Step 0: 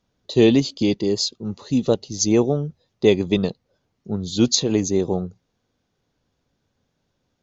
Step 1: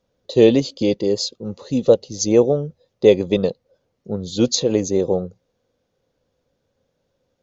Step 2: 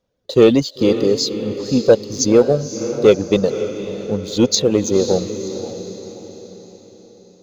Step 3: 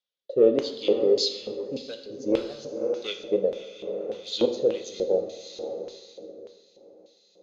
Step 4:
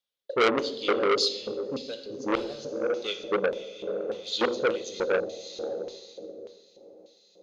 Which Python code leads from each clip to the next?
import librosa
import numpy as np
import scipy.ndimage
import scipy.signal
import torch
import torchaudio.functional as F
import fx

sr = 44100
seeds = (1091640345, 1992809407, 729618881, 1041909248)

y1 = fx.peak_eq(x, sr, hz=520.0, db=13.5, octaves=0.41)
y1 = F.gain(torch.from_numpy(y1), -1.5).numpy()
y2 = fx.dereverb_blind(y1, sr, rt60_s=0.51)
y2 = fx.leveller(y2, sr, passes=1)
y2 = fx.echo_diffused(y2, sr, ms=534, feedback_pct=46, wet_db=-10)
y3 = fx.rotary(y2, sr, hz=0.65)
y3 = fx.filter_lfo_bandpass(y3, sr, shape='square', hz=1.7, low_hz=580.0, high_hz=3500.0, q=2.6)
y3 = fx.rev_plate(y3, sr, seeds[0], rt60_s=0.87, hf_ratio=0.8, predelay_ms=0, drr_db=5.5)
y4 = fx.transformer_sat(y3, sr, knee_hz=2000.0)
y4 = F.gain(torch.from_numpy(y4), 1.0).numpy()